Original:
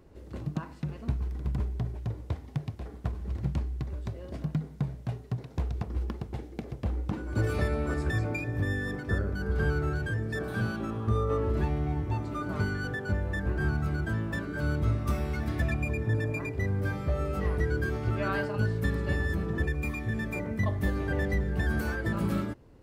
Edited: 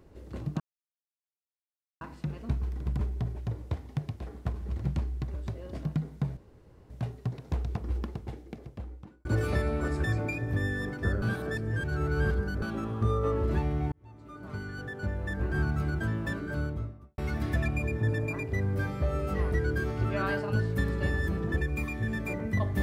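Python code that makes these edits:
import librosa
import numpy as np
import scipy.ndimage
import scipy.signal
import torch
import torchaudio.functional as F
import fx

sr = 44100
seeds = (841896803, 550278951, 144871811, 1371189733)

y = fx.studio_fade_out(x, sr, start_s=14.39, length_s=0.85)
y = fx.edit(y, sr, fx.insert_silence(at_s=0.6, length_s=1.41),
    fx.insert_room_tone(at_s=4.96, length_s=0.53),
    fx.fade_out_span(start_s=6.06, length_s=1.25),
    fx.reverse_span(start_s=9.28, length_s=1.4),
    fx.fade_in_span(start_s=11.98, length_s=1.7), tone=tone)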